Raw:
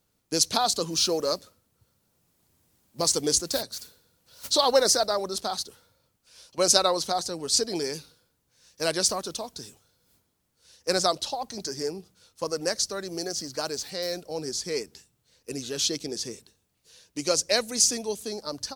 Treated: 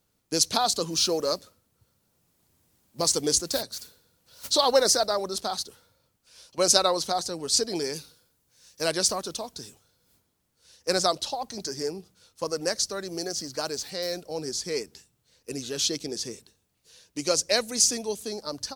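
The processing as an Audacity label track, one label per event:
7.960000	8.820000	treble shelf 5.1 kHz +6 dB

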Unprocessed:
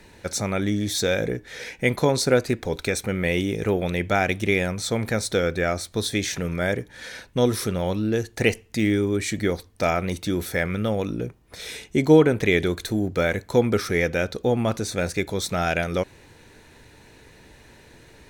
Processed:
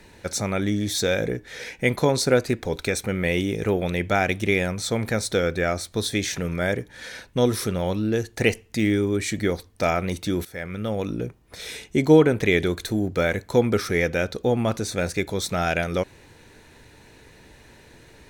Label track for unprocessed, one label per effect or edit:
10.450000	11.120000	fade in, from -15 dB

